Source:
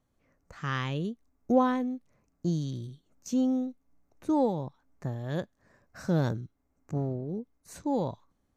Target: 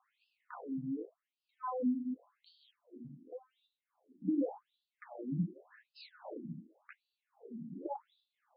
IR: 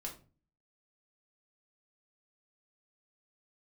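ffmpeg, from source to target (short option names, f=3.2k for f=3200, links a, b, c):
-filter_complex "[1:a]atrim=start_sample=2205[a];[0:a][a]afir=irnorm=-1:irlink=0,asettb=1/sr,asplit=3[b][c][d];[b]atrim=end=3.674[e];[c]atrim=start=3.67:end=6.25,asetpts=PTS-STARTPTS,afade=t=in:d=0.004:c=qsin,afade=t=out:st=2.576:d=0.004:c=qsin,flanger=delay=8:depth=8.9:regen=-79:speed=1.4:shape=triangular[f];[d]atrim=start=6.246[g];[e][f]acrossfade=d=0.004:c1=hsin:c2=qsin[h];[h][g]acrossfade=d=0.004:c1=qsin:c2=hsin,equalizer=f=160:w=0.79:g=10,acompressor=threshold=-42dB:ratio=12,afftfilt=real='re*between(b*sr/1024,220*pow(3700/220,0.5+0.5*sin(2*PI*0.88*pts/sr))/1.41,220*pow(3700/220,0.5+0.5*sin(2*PI*0.88*pts/sr))*1.41)':imag='im*between(b*sr/1024,220*pow(3700/220,0.5+0.5*sin(2*PI*0.88*pts/sr))/1.41,220*pow(3700/220,0.5+0.5*sin(2*PI*0.88*pts/sr))*1.41)':win_size=1024:overlap=0.75,volume=14dB"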